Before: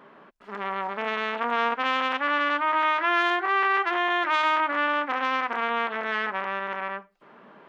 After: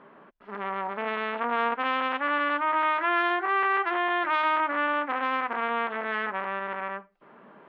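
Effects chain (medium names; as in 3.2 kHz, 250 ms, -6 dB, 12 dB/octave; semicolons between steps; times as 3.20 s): distance through air 280 m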